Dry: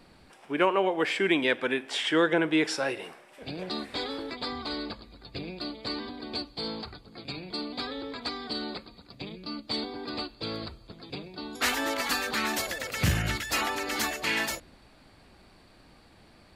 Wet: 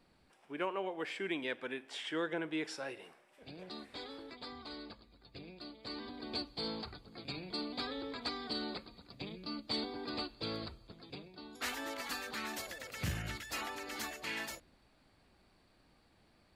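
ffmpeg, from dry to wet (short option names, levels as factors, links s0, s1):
-af "volume=0.562,afade=t=in:st=5.79:d=0.51:silence=0.398107,afade=t=out:st=10.51:d=0.9:silence=0.446684"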